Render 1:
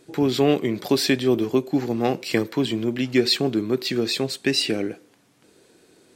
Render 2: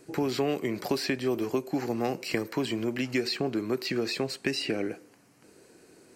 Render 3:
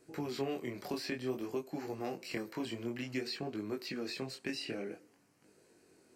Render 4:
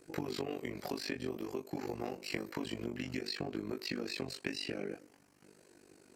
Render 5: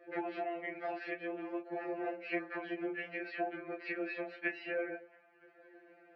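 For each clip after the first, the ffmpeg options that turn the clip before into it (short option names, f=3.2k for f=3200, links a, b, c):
-filter_complex "[0:a]equalizer=f=3.5k:t=o:w=0.24:g=-14,acrossover=split=490|4300[a][b][c];[a]acompressor=threshold=-30dB:ratio=4[d];[b]acompressor=threshold=-31dB:ratio=4[e];[c]acompressor=threshold=-43dB:ratio=4[f];[d][e][f]amix=inputs=3:normalize=0"
-af "flanger=delay=19:depth=6.8:speed=0.54,volume=-6.5dB"
-af "acompressor=threshold=-39dB:ratio=6,tremolo=f=49:d=0.889,volume=7.5dB"
-af "highpass=420,equalizer=f=420:t=q:w=4:g=8,equalizer=f=680:t=q:w=4:g=8,equalizer=f=1k:t=q:w=4:g=-7,equalizer=f=1.6k:t=q:w=4:g=8,equalizer=f=2.3k:t=q:w=4:g=4,lowpass=f=2.4k:w=0.5412,lowpass=f=2.4k:w=1.3066,afftfilt=real='re*2.83*eq(mod(b,8),0)':imag='im*2.83*eq(mod(b,8),0)':win_size=2048:overlap=0.75,volume=4.5dB"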